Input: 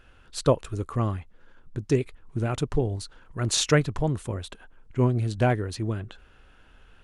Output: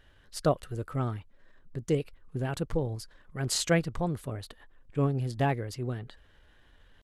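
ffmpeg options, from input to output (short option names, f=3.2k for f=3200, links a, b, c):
-af "asetrate=49501,aresample=44100,atempo=0.890899,volume=-5dB"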